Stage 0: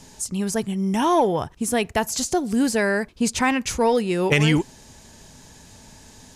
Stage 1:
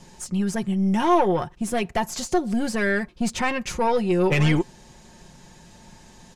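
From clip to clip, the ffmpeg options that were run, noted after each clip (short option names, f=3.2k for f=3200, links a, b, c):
-af "aeval=exprs='(tanh(5.01*val(0)+0.4)-tanh(0.4))/5.01':c=same,aemphasis=mode=reproduction:type=cd,aecho=1:1:5.6:0.59"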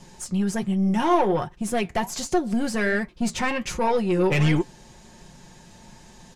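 -filter_complex "[0:a]asplit=2[a][b];[b]asoftclip=type=tanh:threshold=-20dB,volume=-6dB[c];[a][c]amix=inputs=2:normalize=0,flanger=delay=4.7:depth=6.5:regen=-70:speed=1.3:shape=triangular,volume=1dB"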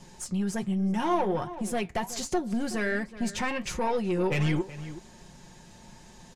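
-filter_complex "[0:a]asplit=2[a][b];[b]adelay=373.2,volume=-17dB,highshelf=f=4k:g=-8.4[c];[a][c]amix=inputs=2:normalize=0,asplit=2[d][e];[e]acompressor=threshold=-27dB:ratio=6,volume=-0.5dB[f];[d][f]amix=inputs=2:normalize=0,volume=-8.5dB"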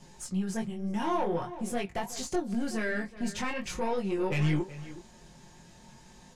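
-af "flanger=delay=19.5:depth=5.1:speed=0.46"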